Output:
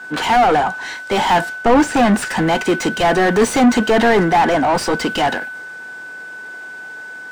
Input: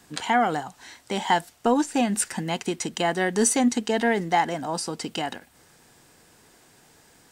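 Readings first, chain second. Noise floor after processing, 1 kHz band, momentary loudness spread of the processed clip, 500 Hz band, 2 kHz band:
−33 dBFS, +10.0 dB, 18 LU, +10.5 dB, +11.5 dB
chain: steady tone 1,500 Hz −45 dBFS
mid-hump overdrive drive 32 dB, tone 1,100 Hz, clips at −8 dBFS
multiband upward and downward expander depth 70%
level +3.5 dB

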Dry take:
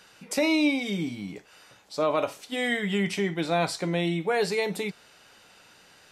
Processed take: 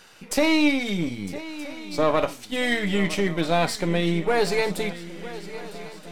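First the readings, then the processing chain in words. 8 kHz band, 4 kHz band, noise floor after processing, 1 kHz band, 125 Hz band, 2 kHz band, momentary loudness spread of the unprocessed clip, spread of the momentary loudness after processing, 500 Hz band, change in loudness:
+3.5 dB, +3.5 dB, −45 dBFS, +4.0 dB, +4.0 dB, +3.5 dB, 10 LU, 15 LU, +3.5 dB, +3.0 dB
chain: gain on one half-wave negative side −7 dB
feedback echo with a long and a short gap by turns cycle 1,274 ms, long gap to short 3 to 1, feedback 48%, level −16 dB
level +6 dB

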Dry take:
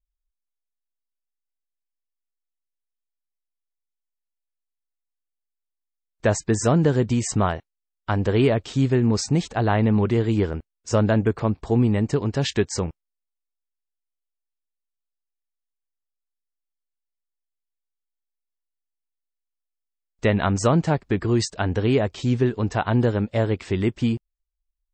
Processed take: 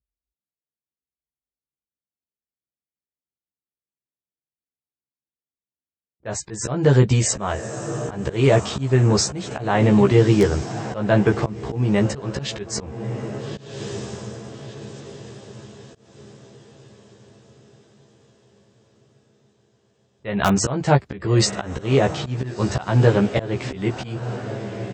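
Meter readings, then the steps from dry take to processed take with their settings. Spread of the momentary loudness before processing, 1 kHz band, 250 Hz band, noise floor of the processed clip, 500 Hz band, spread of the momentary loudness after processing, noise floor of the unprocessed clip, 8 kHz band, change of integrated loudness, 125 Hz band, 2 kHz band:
6 LU, +2.0 dB, +0.5 dB, below −85 dBFS, +2.5 dB, 18 LU, −83 dBFS, +5.5 dB, +1.5 dB, +2.5 dB, +2.5 dB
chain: low-pass that shuts in the quiet parts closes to 380 Hz, open at −20.5 dBFS
high-pass filter 63 Hz 24 dB per octave
dynamic equaliser 250 Hz, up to −6 dB, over −36 dBFS, Q 2.6
on a send: feedback delay with all-pass diffusion 1,285 ms, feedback 43%, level −13.5 dB
on the sum: volume swells 278 ms
in parallel at −8.5 dB: wrap-around overflow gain 10 dB
on the sum: double-tracking delay 15 ms −2.5 dB
level +2.5 dB

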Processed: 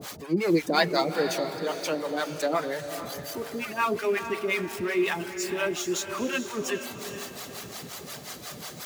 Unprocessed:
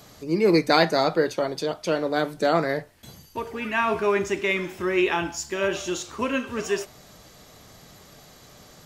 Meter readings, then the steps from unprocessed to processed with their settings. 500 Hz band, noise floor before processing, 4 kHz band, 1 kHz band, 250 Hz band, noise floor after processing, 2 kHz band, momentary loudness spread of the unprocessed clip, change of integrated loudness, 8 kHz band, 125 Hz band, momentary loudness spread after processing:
−4.5 dB, −50 dBFS, −2.0 dB, −4.0 dB, −3.5 dB, −43 dBFS, −3.0 dB, 10 LU, −4.5 dB, +1.5 dB, −4.5 dB, 13 LU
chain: converter with a step at zero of −29.5 dBFS
reverb reduction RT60 0.58 s
high-pass filter 130 Hz 12 dB per octave
two-band tremolo in antiphase 5.6 Hz, depth 100%, crossover 550 Hz
on a send: feedback delay with all-pass diffusion 454 ms, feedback 43%, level −9 dB

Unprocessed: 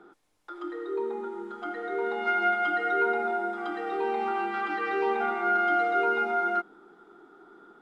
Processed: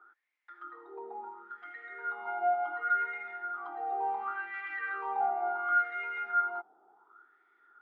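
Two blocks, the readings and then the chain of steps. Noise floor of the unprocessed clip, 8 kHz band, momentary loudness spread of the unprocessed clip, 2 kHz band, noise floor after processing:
−57 dBFS, can't be measured, 12 LU, −4.5 dB, −69 dBFS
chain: LFO wah 0.7 Hz 730–2,100 Hz, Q 6.4
level +3.5 dB

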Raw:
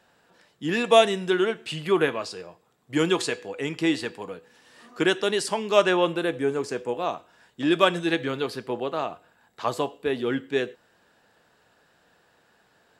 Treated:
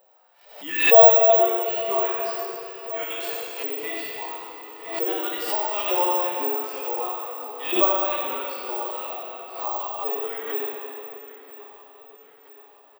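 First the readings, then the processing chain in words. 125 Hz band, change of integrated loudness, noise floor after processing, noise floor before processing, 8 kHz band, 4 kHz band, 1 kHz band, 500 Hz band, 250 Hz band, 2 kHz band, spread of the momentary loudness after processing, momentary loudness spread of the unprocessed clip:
below −20 dB, +3.5 dB, −53 dBFS, −64 dBFS, −5.5 dB, −3.5 dB, +4.0 dB, +1.0 dB, −9.5 dB, −1.5 dB, 18 LU, 13 LU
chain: parametric band 1,600 Hz −11.5 dB 0.27 octaves
auto-filter high-pass saw up 2.2 Hz 520–3,000 Hz
tilt shelving filter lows +5.5 dB, about 870 Hz
in parallel at +1 dB: downward compressor, threshold −32 dBFS, peak gain reduction 25 dB
on the sum: bad sample-rate conversion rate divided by 2×, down filtered, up zero stuff
on a send: repeating echo 978 ms, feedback 49%, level −15 dB
on the sum: dense smooth reverb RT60 3 s, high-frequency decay 0.75×, DRR −4.5 dB
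harmonic and percussive parts rebalanced percussive −11 dB
background raised ahead of every attack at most 85 dB per second
level −8 dB

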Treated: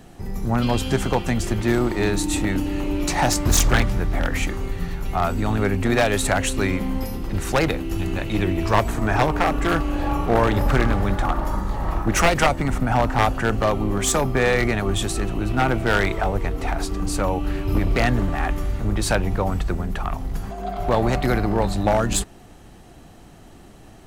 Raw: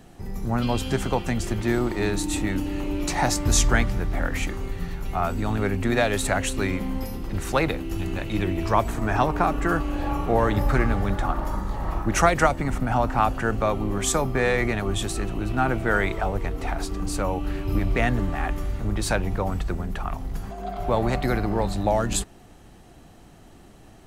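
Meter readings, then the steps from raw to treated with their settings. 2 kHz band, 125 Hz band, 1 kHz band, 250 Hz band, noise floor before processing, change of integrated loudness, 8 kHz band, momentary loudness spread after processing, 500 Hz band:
+3.0 dB, +3.5 dB, +2.0 dB, +3.0 dB, −48 dBFS, +3.0 dB, +3.0 dB, 7 LU, +3.0 dB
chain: wavefolder on the positive side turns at −17.5 dBFS
level +3.5 dB

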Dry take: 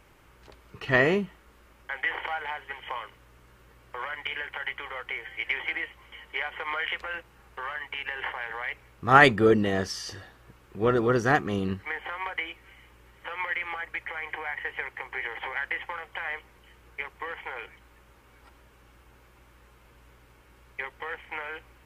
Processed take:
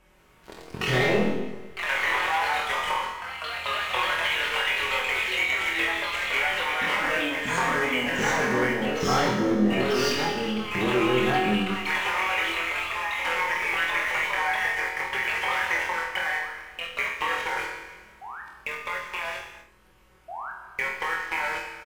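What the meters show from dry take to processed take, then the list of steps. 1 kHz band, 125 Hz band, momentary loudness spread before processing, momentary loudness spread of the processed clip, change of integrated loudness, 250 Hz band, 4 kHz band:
+3.5 dB, +0.5 dB, 16 LU, 11 LU, +3.5 dB, +3.5 dB, +9.0 dB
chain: treble cut that deepens with the level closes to 1,400 Hz, closed at −23 dBFS
comb filter 5.4 ms, depth 59%
leveller curve on the samples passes 3
downward compressor 6 to 1, threshold −28 dBFS, peak gain reduction 16.5 dB
sound drawn into the spectrogram rise, 0:20.28–0:20.51, 640–1,700 Hz −38 dBFS
four-comb reverb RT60 1.4 s, combs from 27 ms, DRR 4 dB
delay with pitch and tempo change per echo 144 ms, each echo +2 semitones, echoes 3
flutter between parallel walls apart 4.1 metres, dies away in 0.38 s

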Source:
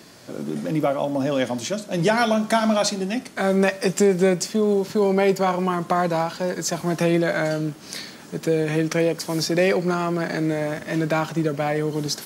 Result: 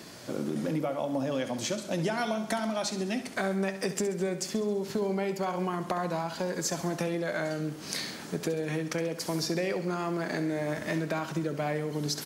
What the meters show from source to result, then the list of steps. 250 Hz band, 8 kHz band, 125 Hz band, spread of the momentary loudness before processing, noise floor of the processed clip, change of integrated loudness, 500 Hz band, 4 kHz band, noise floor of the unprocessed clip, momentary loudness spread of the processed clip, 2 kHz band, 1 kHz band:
−9.0 dB, −6.0 dB, −8.5 dB, 8 LU, −43 dBFS, −9.5 dB, −10.0 dB, −7.0 dB, −43 dBFS, 3 LU, −8.5 dB, −9.5 dB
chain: downward compressor 6 to 1, threshold −28 dBFS, peak gain reduction 14 dB
on a send: repeating echo 67 ms, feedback 55%, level −12 dB

